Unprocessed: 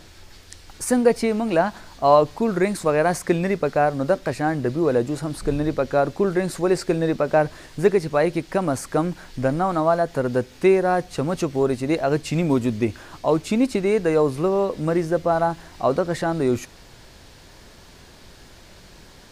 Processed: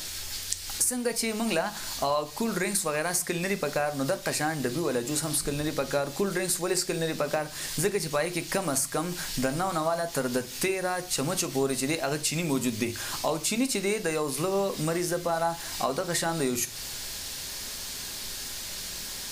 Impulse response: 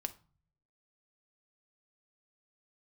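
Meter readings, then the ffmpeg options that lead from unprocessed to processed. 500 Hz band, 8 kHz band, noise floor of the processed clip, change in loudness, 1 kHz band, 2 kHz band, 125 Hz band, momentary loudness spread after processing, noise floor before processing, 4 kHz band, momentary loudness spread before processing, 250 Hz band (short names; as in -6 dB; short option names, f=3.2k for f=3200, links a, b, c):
-9.0 dB, +9.0 dB, -39 dBFS, -7.0 dB, -7.5 dB, -2.5 dB, -8.0 dB, 7 LU, -47 dBFS, +6.0 dB, 6 LU, -8.0 dB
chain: -filter_complex "[0:a]crystalizer=i=9:c=0,acompressor=threshold=-24dB:ratio=6[a];[1:a]atrim=start_sample=2205[b];[a][b]afir=irnorm=-1:irlink=0"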